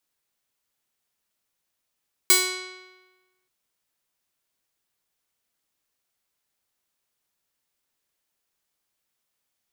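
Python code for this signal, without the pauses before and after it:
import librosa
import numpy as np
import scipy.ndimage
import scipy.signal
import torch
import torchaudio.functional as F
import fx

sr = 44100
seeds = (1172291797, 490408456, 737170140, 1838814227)

y = fx.pluck(sr, length_s=1.18, note=66, decay_s=1.24, pick=0.41, brightness='bright')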